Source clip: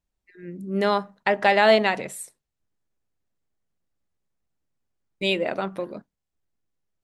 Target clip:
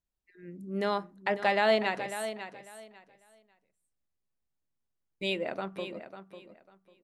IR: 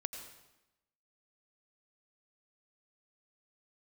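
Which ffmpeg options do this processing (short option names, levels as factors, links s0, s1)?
-af "aecho=1:1:547|1094|1641:0.282|0.0592|0.0124,volume=0.398"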